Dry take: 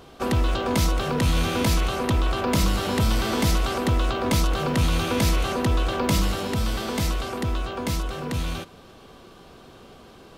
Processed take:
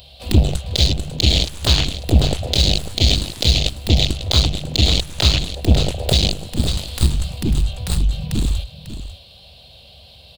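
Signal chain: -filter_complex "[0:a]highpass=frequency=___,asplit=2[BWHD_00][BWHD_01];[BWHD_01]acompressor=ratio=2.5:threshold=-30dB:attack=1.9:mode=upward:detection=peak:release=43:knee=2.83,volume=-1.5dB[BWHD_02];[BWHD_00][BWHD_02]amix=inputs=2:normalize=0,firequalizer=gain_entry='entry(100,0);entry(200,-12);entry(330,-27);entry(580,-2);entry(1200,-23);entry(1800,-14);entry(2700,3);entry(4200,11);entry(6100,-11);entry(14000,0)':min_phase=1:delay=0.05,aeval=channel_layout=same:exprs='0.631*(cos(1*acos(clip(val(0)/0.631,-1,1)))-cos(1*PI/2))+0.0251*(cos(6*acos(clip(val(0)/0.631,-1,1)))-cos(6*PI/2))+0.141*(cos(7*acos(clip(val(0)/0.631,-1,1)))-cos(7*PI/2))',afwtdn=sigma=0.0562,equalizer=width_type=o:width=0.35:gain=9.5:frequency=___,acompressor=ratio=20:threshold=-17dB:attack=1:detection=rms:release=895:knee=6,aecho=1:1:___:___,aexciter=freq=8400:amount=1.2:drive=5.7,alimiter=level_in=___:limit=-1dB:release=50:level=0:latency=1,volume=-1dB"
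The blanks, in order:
47, 66, 546, 0.251, 17.5dB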